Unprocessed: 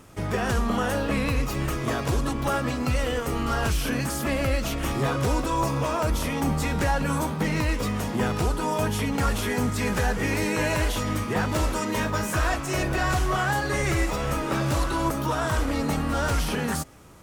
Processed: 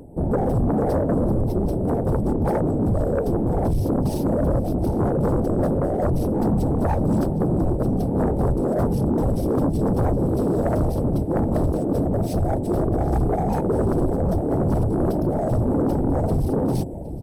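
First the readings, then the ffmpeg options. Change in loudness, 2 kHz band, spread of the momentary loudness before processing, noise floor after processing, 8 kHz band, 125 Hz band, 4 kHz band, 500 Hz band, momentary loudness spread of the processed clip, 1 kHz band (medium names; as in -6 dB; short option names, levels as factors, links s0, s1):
+3.5 dB, -15.5 dB, 3 LU, -25 dBFS, under -10 dB, +5.5 dB, under -15 dB, +6.0 dB, 2 LU, -1.5 dB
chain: -filter_complex "[0:a]afftfilt=real='re*(1-between(b*sr/4096,880,7700))':imag='im*(1-between(b*sr/4096,880,7700))':win_size=4096:overlap=0.75,adynamicsmooth=sensitivity=7:basefreq=5700,firequalizer=gain_entry='entry(410,0);entry(900,-12);entry(5400,7);entry(8300,-15)':delay=0.05:min_phase=1,aexciter=amount=5.2:drive=5.7:freq=11000,areverse,acompressor=mode=upward:threshold=0.02:ratio=2.5,areverse,equalizer=f=2600:w=0.41:g=12,asplit=2[s0][s1];[s1]aecho=0:1:762:0.133[s2];[s0][s2]amix=inputs=2:normalize=0,afftfilt=real='hypot(re,im)*cos(2*PI*random(0))':imag='hypot(re,im)*sin(2*PI*random(1))':win_size=512:overlap=0.75,aeval=exprs='0.168*sin(PI/2*3.16*val(0)/0.168)':c=same"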